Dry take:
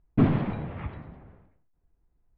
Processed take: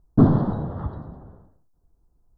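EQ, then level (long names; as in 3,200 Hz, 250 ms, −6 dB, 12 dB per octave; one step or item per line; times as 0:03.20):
Butterworth band-reject 2,400 Hz, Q 0.77
+6.0 dB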